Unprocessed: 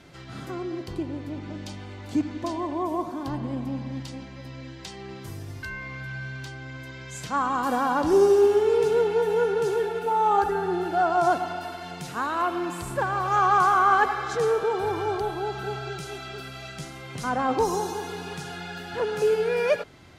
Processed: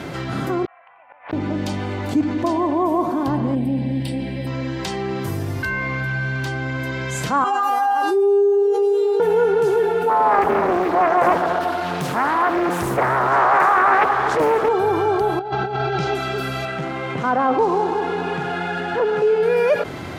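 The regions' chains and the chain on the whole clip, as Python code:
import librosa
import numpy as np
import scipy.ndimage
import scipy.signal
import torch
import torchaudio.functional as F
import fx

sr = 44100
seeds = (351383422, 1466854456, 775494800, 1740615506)

y = fx.chain(x, sr, fx.ellip_bandpass(low_hz=710.0, high_hz=2500.0, order=3, stop_db=40),
    fx.gate_flip(shuts_db=-41.0, range_db=-40),
    fx.doppler_dist(depth_ms=0.87), at=(0.65, 1.33))
y = fx.chain(y, sr, fx.peak_eq(hz=8500.0, db=15.0, octaves=0.38),
    fx.fixed_phaser(hz=2900.0, stages=4), at=(3.55, 4.47))
y = fx.chain(y, sr, fx.highpass(hz=260.0, slope=24),
    fx.comb_fb(f0_hz=400.0, decay_s=0.66, harmonics='all', damping=0.0, mix_pct=100),
    fx.env_flatten(amount_pct=70), at=(7.44, 9.2))
y = fx.chain(y, sr, fx.echo_single(ms=241, db=-12.5),
    fx.doppler_dist(depth_ms=0.74), at=(10.09, 14.69))
y = fx.chain(y, sr, fx.lowpass(hz=5400.0, slope=24),
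    fx.peak_eq(hz=800.0, db=5.5, octaves=0.28),
    fx.over_compress(threshold_db=-34.0, ratio=-0.5), at=(15.39, 16.15))
y = fx.chain(y, sr, fx.median_filter(points=9),
    fx.lowpass(hz=5400.0, slope=12),
    fx.low_shelf(hz=140.0, db=-10.5), at=(16.65, 19.43))
y = fx.highpass(y, sr, hz=140.0, slope=6)
y = fx.peak_eq(y, sr, hz=5800.0, db=-8.5, octaves=2.7)
y = fx.env_flatten(y, sr, amount_pct=50)
y = y * librosa.db_to_amplitude(5.0)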